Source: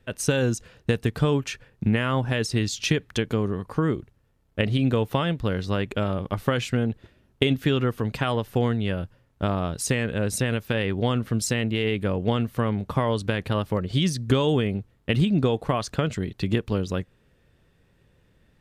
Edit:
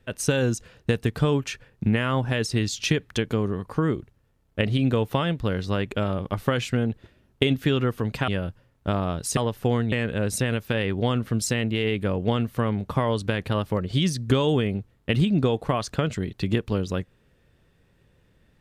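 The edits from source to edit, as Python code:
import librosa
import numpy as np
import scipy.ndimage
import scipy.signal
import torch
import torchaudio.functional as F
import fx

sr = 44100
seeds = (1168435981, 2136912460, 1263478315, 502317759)

y = fx.edit(x, sr, fx.move(start_s=8.28, length_s=0.55, to_s=9.92), tone=tone)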